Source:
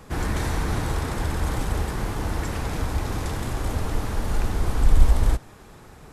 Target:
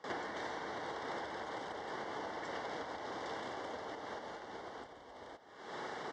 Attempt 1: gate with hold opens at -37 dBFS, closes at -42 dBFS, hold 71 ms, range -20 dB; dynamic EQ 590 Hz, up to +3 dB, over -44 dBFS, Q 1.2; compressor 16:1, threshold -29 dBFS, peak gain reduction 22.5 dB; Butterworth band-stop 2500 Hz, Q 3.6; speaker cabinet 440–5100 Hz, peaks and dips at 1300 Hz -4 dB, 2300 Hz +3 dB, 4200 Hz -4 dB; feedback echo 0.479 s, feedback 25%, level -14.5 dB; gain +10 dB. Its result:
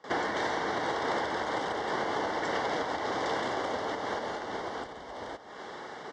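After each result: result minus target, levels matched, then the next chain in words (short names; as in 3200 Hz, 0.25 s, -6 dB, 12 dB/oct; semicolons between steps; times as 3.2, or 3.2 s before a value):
echo 0.218 s late; compressor: peak gain reduction -11 dB
gate with hold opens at -37 dBFS, closes at -42 dBFS, hold 71 ms, range -20 dB; dynamic EQ 590 Hz, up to +3 dB, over -44 dBFS, Q 1.2; compressor 16:1, threshold -29 dBFS, peak gain reduction 22.5 dB; Butterworth band-stop 2500 Hz, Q 3.6; speaker cabinet 440–5100 Hz, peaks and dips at 1300 Hz -4 dB, 2300 Hz +3 dB, 4200 Hz -4 dB; feedback echo 0.261 s, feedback 25%, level -14.5 dB; gain +10 dB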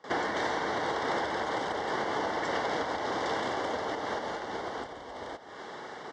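compressor: peak gain reduction -11 dB
gate with hold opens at -37 dBFS, closes at -42 dBFS, hold 71 ms, range -20 dB; dynamic EQ 590 Hz, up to +3 dB, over -44 dBFS, Q 1.2; compressor 16:1, threshold -41 dBFS, peak gain reduction 33.5 dB; Butterworth band-stop 2500 Hz, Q 3.6; speaker cabinet 440–5100 Hz, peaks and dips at 1300 Hz -4 dB, 2300 Hz +3 dB, 4200 Hz -4 dB; feedback echo 0.261 s, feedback 25%, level -14.5 dB; gain +10 dB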